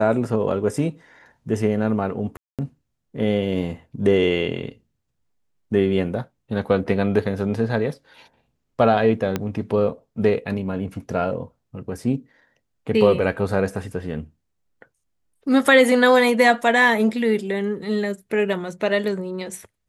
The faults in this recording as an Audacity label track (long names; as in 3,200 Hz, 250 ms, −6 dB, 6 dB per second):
2.370000	2.590000	drop-out 217 ms
9.360000	9.360000	click −9 dBFS